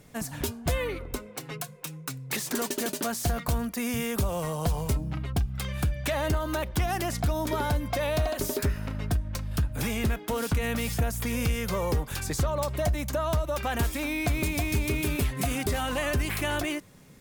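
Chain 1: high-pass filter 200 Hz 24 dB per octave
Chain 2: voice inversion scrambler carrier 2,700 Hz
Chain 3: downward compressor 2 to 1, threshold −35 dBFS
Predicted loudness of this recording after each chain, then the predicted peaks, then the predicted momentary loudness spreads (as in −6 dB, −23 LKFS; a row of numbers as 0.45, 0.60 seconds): −31.5, −25.0, −35.0 LKFS; −14.5, −15.0, −21.0 dBFS; 8, 8, 4 LU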